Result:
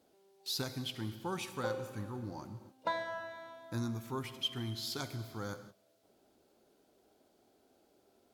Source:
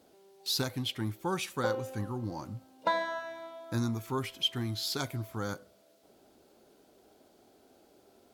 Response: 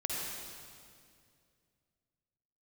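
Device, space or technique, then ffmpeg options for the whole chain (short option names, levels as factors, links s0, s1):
keyed gated reverb: -filter_complex "[0:a]asplit=3[s0][s1][s2];[1:a]atrim=start_sample=2205[s3];[s1][s3]afir=irnorm=-1:irlink=0[s4];[s2]apad=whole_len=367716[s5];[s4][s5]sidechaingate=range=0.0447:threshold=0.00224:ratio=16:detection=peak,volume=0.237[s6];[s0][s6]amix=inputs=2:normalize=0,volume=0.422"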